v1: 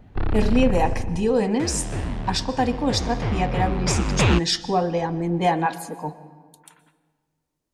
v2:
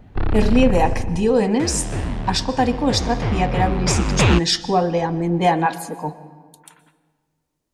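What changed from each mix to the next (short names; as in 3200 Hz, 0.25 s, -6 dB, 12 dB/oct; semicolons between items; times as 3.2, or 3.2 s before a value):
speech +3.5 dB; background +3.0 dB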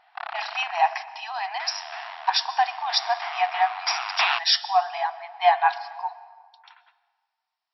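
master: add brick-wall FIR band-pass 650–5700 Hz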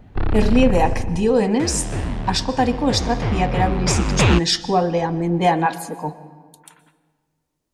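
master: remove brick-wall FIR band-pass 650–5700 Hz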